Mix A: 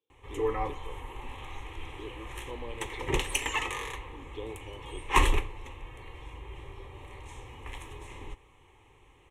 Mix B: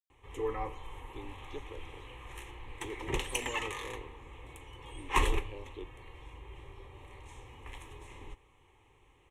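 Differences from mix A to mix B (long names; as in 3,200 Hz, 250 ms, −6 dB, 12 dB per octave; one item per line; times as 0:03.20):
speech: entry +0.85 s
background −5.0 dB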